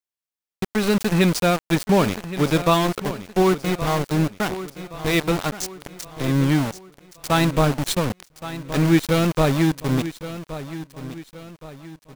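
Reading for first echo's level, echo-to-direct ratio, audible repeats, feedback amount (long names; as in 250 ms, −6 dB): −13.5 dB, −12.5 dB, 3, 42%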